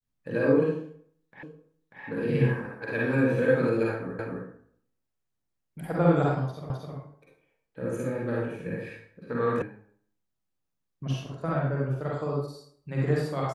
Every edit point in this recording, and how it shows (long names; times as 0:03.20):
0:01.43: the same again, the last 0.59 s
0:04.19: the same again, the last 0.26 s
0:06.70: the same again, the last 0.26 s
0:09.62: cut off before it has died away